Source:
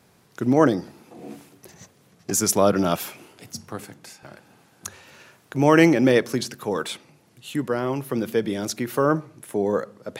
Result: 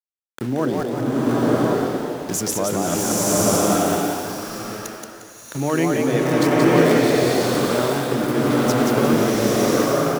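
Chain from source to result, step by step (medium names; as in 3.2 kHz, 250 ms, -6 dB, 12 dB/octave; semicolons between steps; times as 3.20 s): bass shelf 230 Hz +12 dB; hum notches 50/100/150/200/250/300/350/400/450/500 Hz; small samples zeroed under -26.5 dBFS; in parallel at 0 dB: compressor with a negative ratio -23 dBFS; on the sum: bass shelf 110 Hz -7.5 dB; on a send: frequency-shifting echo 177 ms, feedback 33%, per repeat +120 Hz, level -4 dB; on the sum: swelling reverb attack 1000 ms, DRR -6 dB; trim -9 dB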